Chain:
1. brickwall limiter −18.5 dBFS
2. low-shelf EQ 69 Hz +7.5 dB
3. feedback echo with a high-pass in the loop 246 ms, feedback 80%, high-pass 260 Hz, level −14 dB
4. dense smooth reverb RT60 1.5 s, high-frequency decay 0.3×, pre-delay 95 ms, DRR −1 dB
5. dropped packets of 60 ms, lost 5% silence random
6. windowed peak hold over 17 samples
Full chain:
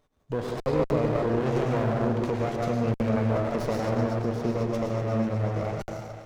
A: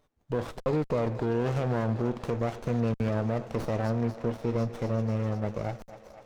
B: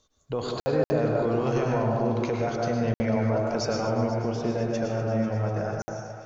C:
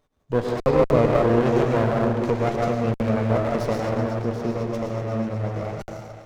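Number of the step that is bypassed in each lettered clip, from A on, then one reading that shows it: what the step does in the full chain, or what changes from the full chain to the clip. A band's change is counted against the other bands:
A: 4, change in integrated loudness −3.0 LU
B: 6, distortion level −9 dB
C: 1, average gain reduction 2.0 dB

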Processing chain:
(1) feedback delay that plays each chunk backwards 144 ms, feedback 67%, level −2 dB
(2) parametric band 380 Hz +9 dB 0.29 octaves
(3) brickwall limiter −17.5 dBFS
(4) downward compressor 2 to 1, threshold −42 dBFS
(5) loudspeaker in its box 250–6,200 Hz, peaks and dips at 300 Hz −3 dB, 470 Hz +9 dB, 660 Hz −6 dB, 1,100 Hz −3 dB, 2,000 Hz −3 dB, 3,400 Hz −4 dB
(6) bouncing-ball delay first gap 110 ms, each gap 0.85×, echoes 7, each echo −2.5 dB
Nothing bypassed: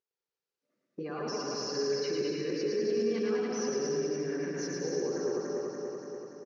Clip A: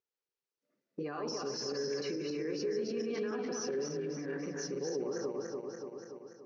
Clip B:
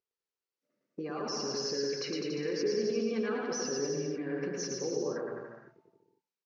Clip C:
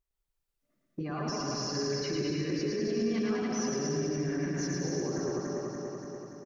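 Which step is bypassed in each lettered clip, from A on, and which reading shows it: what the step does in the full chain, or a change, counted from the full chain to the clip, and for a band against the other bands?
6, change in integrated loudness −4.5 LU
1, change in integrated loudness −1.0 LU
5, 125 Hz band +7.5 dB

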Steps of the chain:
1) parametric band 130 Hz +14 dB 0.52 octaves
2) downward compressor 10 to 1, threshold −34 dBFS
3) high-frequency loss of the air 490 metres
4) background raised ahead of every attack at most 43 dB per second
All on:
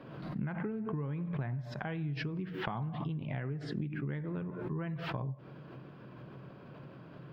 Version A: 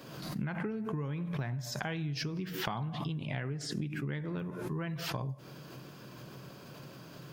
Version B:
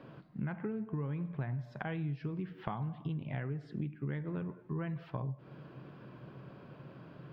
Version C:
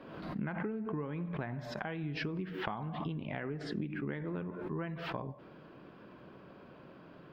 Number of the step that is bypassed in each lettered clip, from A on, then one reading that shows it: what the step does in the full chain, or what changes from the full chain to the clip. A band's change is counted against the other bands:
3, 4 kHz band +8.0 dB
4, 2 kHz band −2.5 dB
1, 125 Hz band −6.0 dB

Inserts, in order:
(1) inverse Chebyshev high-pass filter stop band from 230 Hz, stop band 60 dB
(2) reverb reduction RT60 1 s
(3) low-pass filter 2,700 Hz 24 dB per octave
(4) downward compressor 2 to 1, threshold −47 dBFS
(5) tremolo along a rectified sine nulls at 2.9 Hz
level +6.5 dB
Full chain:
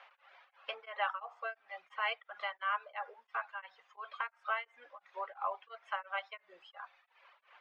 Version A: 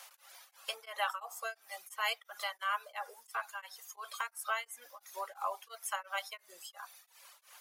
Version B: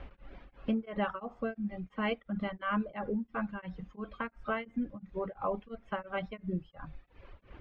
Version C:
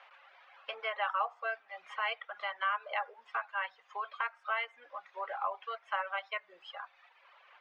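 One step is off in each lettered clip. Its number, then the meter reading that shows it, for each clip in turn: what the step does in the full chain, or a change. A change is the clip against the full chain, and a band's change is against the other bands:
3, 4 kHz band +5.5 dB
1, 500 Hz band +11.0 dB
5, change in momentary loudness spread −2 LU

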